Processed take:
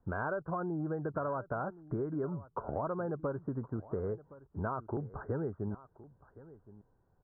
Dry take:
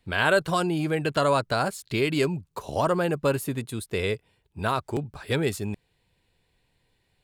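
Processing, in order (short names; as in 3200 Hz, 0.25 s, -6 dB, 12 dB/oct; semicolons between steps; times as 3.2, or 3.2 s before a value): steep low-pass 1500 Hz 72 dB/oct; compressor 6:1, threshold -33 dBFS, peak gain reduction 15 dB; echo 1.068 s -18.5 dB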